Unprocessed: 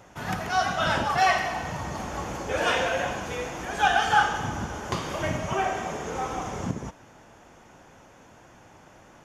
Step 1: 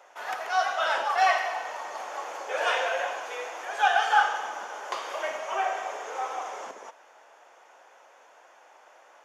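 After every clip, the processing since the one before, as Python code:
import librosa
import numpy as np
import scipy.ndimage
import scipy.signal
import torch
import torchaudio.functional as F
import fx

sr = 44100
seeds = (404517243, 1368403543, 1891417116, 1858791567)

y = scipy.signal.sosfilt(scipy.signal.butter(4, 520.0, 'highpass', fs=sr, output='sos'), x)
y = fx.high_shelf(y, sr, hz=4000.0, db=-6.5)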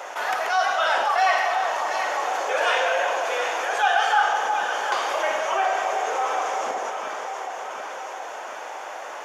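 y = fx.echo_alternate(x, sr, ms=364, hz=980.0, feedback_pct=67, wet_db=-9.0)
y = fx.env_flatten(y, sr, amount_pct=50)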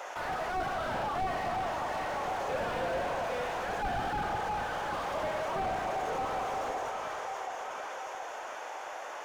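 y = fx.slew_limit(x, sr, full_power_hz=49.0)
y = y * 10.0 ** (-6.0 / 20.0)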